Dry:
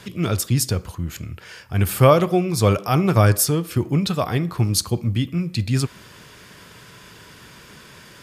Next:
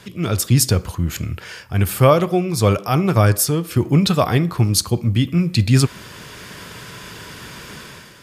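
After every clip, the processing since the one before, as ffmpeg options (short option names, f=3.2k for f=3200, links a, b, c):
-af "dynaudnorm=f=110:g=7:m=9.5dB,volume=-1dB"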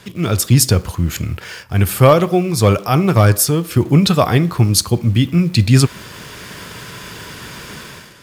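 -filter_complex "[0:a]asplit=2[a][b];[b]acrusher=bits=5:mix=0:aa=0.000001,volume=-10.5dB[c];[a][c]amix=inputs=2:normalize=0,asoftclip=type=hard:threshold=-2.5dB,volume=1dB"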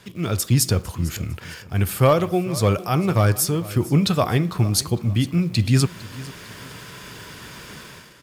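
-af "aecho=1:1:453|906|1359:0.119|0.0428|0.0154,volume=-6.5dB"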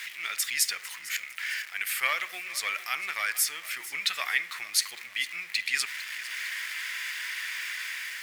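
-af "aeval=exprs='val(0)+0.5*0.0237*sgn(val(0))':c=same,highpass=f=2k:t=q:w=4.8,volume=-5dB"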